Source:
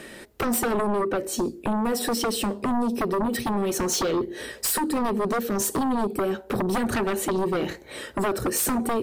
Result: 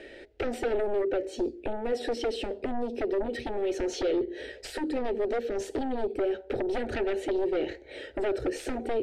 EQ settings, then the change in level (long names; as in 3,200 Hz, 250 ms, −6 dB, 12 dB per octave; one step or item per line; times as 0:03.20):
low-pass filter 2,700 Hz 12 dB per octave
parametric band 140 Hz −4 dB 1.8 octaves
phaser with its sweep stopped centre 450 Hz, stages 4
0.0 dB